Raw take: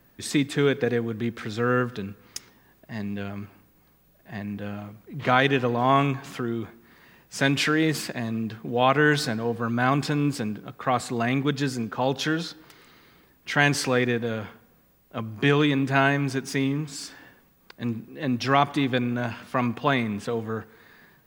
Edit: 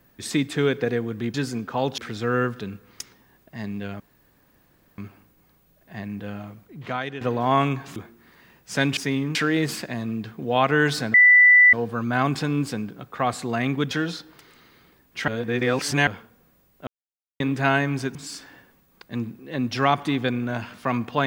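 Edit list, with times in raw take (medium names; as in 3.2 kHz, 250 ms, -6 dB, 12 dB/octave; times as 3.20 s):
3.36 s: insert room tone 0.98 s
5.00–5.59 s: fade out quadratic, to -12.5 dB
6.34–6.60 s: delete
9.40 s: add tone 1.98 kHz -9.5 dBFS 0.59 s
11.58–12.22 s: move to 1.34 s
13.59–14.38 s: reverse
15.18–15.71 s: mute
16.46–16.84 s: move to 7.61 s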